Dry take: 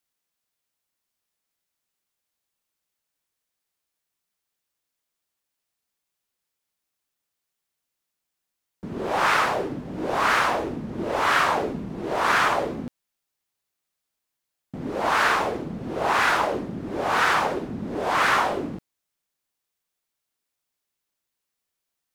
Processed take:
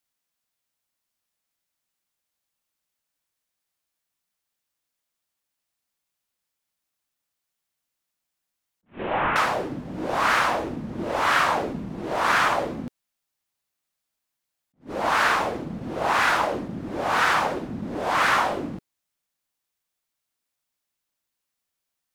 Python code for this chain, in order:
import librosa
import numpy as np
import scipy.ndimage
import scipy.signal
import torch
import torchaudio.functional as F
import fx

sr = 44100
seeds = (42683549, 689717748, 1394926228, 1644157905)

y = fx.delta_mod(x, sr, bps=16000, step_db=-27.5, at=(8.86, 9.36))
y = fx.peak_eq(y, sr, hz=410.0, db=-5.0, octaves=0.29)
y = fx.attack_slew(y, sr, db_per_s=270.0)